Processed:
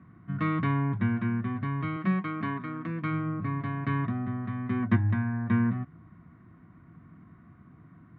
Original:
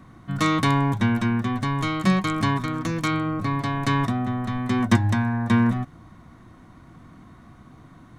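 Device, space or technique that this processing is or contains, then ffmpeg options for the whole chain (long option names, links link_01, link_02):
bass cabinet: -filter_complex "[0:a]asettb=1/sr,asplit=3[link_01][link_02][link_03];[link_01]atrim=end=1.964[link_04];[link_02]atrim=start=1.96:end=3.02,asetpts=PTS-STARTPTS,afade=type=in:duration=0.004:curve=qsin,afade=type=out:start_time=1.056:duration=0.004:curve=qsin,highpass=200[link_05];[link_03]atrim=start=3.016[link_06];[link_04][link_05]acrossfade=duration=0.004:curve1=hsin:curve2=qsin[link_07];[link_07][link_06]acrossfade=duration=0.004:curve1=qsin:curve2=hsin,highpass=66,equalizer=frequency=100:width_type=q:width=4:gain=4,equalizer=frequency=170:width_type=q:width=4:gain=7,equalizer=frequency=540:width_type=q:width=4:gain=-7,equalizer=frequency=840:width_type=q:width=4:gain=-9,lowpass=frequency=2300:width=0.5412,lowpass=frequency=2300:width=1.3066,volume=-7dB"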